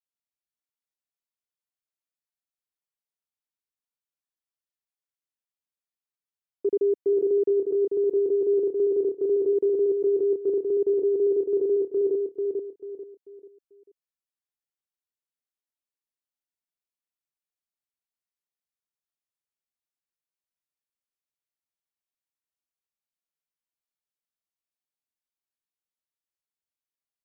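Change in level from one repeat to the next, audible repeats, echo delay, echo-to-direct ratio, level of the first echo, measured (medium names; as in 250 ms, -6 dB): -9.5 dB, 4, 441 ms, -3.5 dB, -4.0 dB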